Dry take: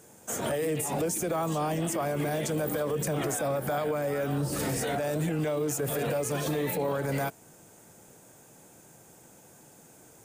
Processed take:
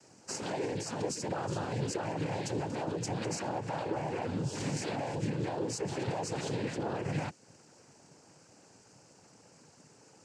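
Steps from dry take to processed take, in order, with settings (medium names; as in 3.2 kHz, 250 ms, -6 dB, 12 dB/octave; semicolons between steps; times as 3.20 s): dynamic bell 890 Hz, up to -5 dB, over -44 dBFS, Q 0.8; noise-vocoded speech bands 8; trim -3 dB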